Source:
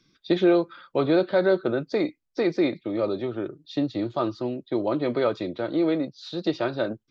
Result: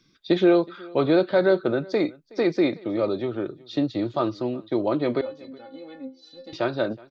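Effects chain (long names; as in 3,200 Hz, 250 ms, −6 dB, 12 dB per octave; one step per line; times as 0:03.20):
0:05.21–0:06.53: stiff-string resonator 260 Hz, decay 0.26 s, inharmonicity 0.008
single-tap delay 370 ms −23.5 dB
level +1.5 dB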